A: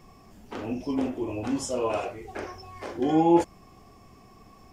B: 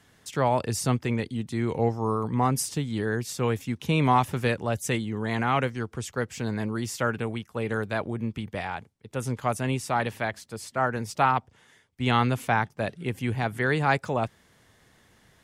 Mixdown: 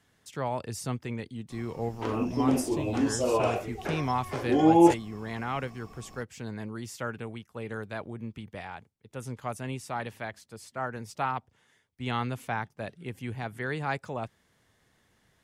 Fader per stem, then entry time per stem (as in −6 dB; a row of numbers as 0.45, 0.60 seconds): +1.5, −8.0 decibels; 1.50, 0.00 seconds